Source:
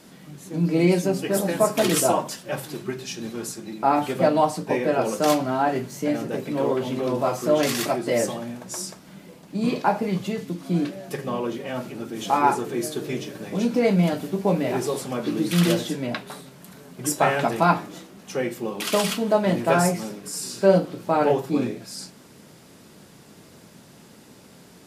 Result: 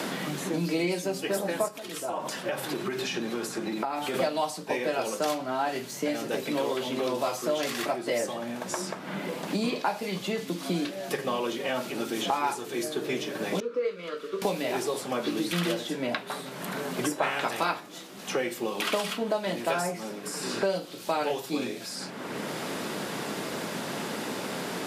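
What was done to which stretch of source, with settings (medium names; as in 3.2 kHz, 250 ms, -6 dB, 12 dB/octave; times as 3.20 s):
1.68–4.14 s: compression, threshold -32 dBFS
13.60–14.42 s: two resonant band-passes 760 Hz, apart 1.4 oct
17.22–17.79 s: spectral peaks clipped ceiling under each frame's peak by 13 dB
whole clip: high-pass 440 Hz 6 dB/octave; peaking EQ 3.6 kHz +3 dB; three bands compressed up and down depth 100%; trim -3.5 dB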